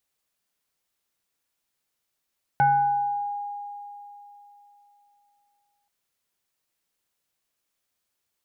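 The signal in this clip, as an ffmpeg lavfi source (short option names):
-f lavfi -i "aevalsrc='0.178*pow(10,-3*t/3.35)*sin(2*PI*817*t+0.64*pow(10,-3*t/1.27)*sin(2*PI*0.83*817*t))':d=3.28:s=44100"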